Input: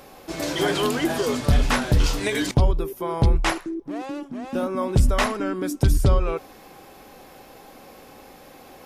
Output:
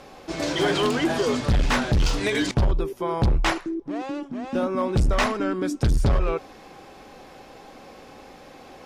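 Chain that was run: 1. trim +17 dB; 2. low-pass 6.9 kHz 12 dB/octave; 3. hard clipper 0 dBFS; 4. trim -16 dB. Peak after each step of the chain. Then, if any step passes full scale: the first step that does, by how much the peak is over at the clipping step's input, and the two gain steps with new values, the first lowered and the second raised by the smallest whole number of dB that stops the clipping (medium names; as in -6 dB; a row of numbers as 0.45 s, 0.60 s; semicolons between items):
+8.0 dBFS, +8.0 dBFS, 0.0 dBFS, -16.0 dBFS; step 1, 8.0 dB; step 1 +9 dB, step 4 -8 dB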